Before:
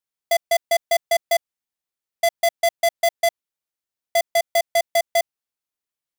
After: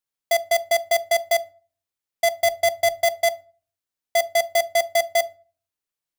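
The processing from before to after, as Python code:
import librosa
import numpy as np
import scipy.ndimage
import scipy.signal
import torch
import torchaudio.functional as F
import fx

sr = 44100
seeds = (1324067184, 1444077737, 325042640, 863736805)

y = fx.low_shelf(x, sr, hz=140.0, db=11.5, at=(2.39, 3.05))
y = fx.room_shoebox(y, sr, seeds[0], volume_m3=260.0, walls='furnished', distance_m=0.34)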